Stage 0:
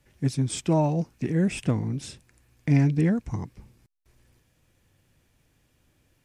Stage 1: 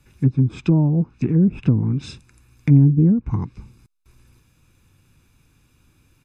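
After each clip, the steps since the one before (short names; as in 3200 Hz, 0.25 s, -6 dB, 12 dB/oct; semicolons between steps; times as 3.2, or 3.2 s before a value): treble ducked by the level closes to 430 Hz, closed at -20 dBFS; comb 0.8 ms, depth 58%; gain +5 dB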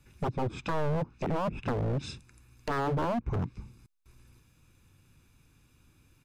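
wavefolder -19.5 dBFS; gain -4.5 dB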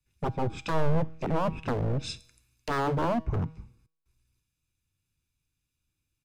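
resonator 160 Hz, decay 0.85 s, harmonics all, mix 50%; three-band expander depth 70%; gain +7 dB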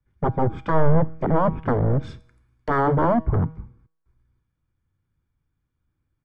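polynomial smoothing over 41 samples; gain +8 dB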